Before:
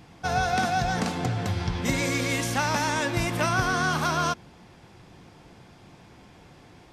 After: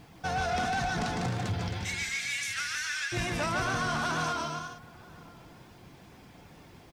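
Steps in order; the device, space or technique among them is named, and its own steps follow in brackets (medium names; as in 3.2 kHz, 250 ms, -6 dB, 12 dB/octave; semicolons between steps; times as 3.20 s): reverb removal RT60 0.69 s; 1.68–3.12 s: steep high-pass 1.4 kHz 48 dB/octave; bouncing-ball echo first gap 150 ms, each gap 0.75×, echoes 5; echo from a far wall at 170 m, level -25 dB; compact cassette (saturation -23 dBFS, distortion -13 dB; low-pass 9.6 kHz 12 dB/octave; wow and flutter; white noise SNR 36 dB); trim -2 dB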